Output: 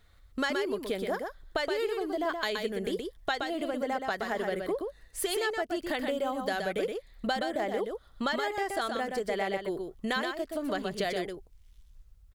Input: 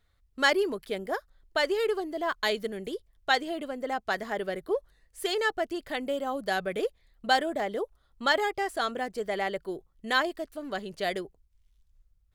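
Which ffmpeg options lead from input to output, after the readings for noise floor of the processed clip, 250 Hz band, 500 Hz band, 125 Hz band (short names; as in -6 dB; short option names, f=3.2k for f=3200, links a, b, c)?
-58 dBFS, +1.5 dB, -1.0 dB, +2.0 dB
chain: -filter_complex "[0:a]acompressor=threshold=-38dB:ratio=6,asplit=2[a][b];[b]aecho=0:1:123:0.562[c];[a][c]amix=inputs=2:normalize=0,volume=8.5dB"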